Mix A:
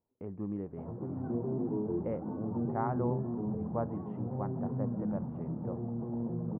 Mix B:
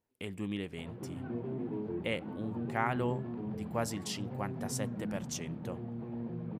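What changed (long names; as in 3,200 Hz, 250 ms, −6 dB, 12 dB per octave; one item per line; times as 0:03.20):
background −4.0 dB
master: remove inverse Chebyshev low-pass filter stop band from 4,800 Hz, stop band 70 dB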